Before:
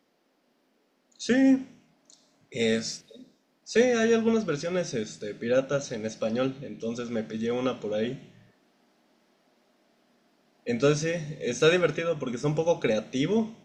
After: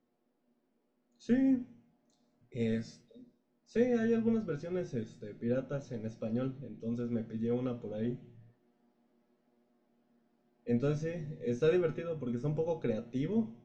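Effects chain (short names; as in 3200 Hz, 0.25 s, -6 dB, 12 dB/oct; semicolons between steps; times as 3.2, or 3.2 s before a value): tilt -3.5 dB/oct; resonator 120 Hz, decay 0.18 s, harmonics all, mix 80%; gain -6 dB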